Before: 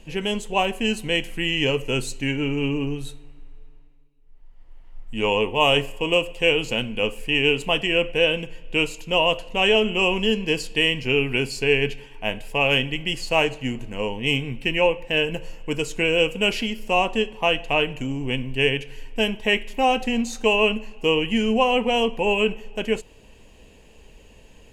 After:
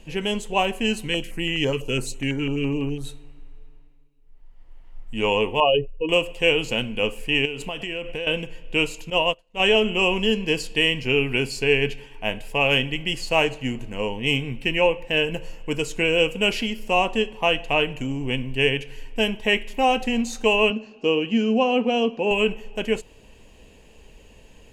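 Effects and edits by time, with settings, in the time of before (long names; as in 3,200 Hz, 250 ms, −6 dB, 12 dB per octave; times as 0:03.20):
0:01.06–0:03.04: notch on a step sequencer 12 Hz 650–4,600 Hz
0:05.60–0:06.09: expanding power law on the bin magnitudes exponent 2.3
0:07.45–0:08.27: downward compressor, threshold −26 dBFS
0:09.10–0:09.60: expander for the loud parts 2.5 to 1, over −36 dBFS
0:20.70–0:22.31: loudspeaker in its box 180–5,900 Hz, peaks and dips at 250 Hz +5 dB, 940 Hz −7 dB, 2,000 Hz −10 dB, 3,200 Hz −4 dB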